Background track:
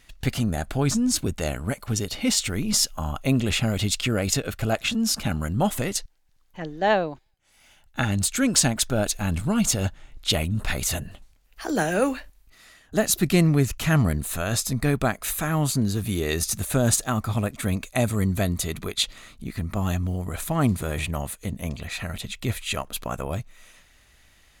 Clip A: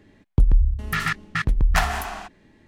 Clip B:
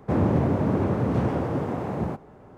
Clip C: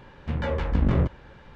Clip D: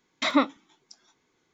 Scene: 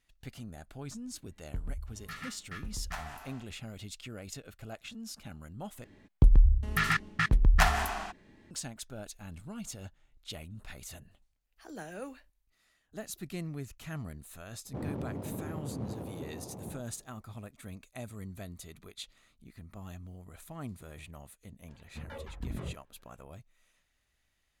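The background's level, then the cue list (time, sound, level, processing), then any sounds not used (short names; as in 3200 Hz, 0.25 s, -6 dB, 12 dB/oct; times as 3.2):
background track -20 dB
1.16 add A -12 dB + resonator 89 Hz, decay 0.26 s, mix 80%
5.84 replace with A -3.5 dB
14.65 add B -15.5 dB + Wiener smoothing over 25 samples
21.68 add C -15 dB + reverb removal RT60 1.6 s
not used: D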